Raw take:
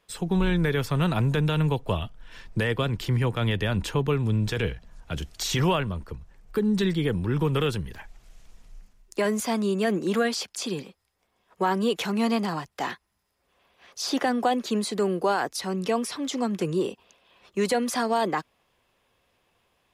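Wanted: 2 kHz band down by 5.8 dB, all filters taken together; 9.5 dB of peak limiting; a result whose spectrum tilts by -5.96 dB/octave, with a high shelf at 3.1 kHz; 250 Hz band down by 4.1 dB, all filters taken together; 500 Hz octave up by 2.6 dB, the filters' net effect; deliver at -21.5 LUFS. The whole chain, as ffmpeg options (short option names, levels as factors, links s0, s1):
-af "equalizer=f=250:t=o:g=-7.5,equalizer=f=500:t=o:g=6,equalizer=f=2000:t=o:g=-6,highshelf=f=3100:g=-5.5,volume=2.82,alimiter=limit=0.266:level=0:latency=1"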